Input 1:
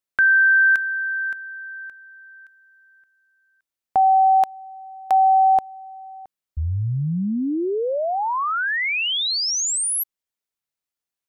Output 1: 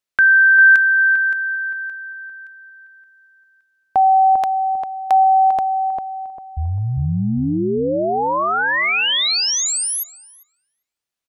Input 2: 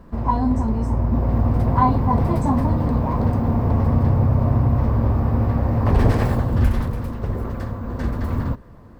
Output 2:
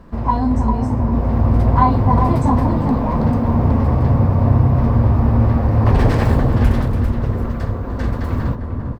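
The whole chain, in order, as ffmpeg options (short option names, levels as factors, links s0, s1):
-filter_complex "[0:a]lowpass=f=3500:p=1,highshelf=f=2300:g=8,asplit=2[s0][s1];[s1]adelay=398,lowpass=f=930:p=1,volume=0.668,asplit=2[s2][s3];[s3]adelay=398,lowpass=f=930:p=1,volume=0.37,asplit=2[s4][s5];[s5]adelay=398,lowpass=f=930:p=1,volume=0.37,asplit=2[s6][s7];[s7]adelay=398,lowpass=f=930:p=1,volume=0.37,asplit=2[s8][s9];[s9]adelay=398,lowpass=f=930:p=1,volume=0.37[s10];[s0][s2][s4][s6][s8][s10]amix=inputs=6:normalize=0,volume=1.26"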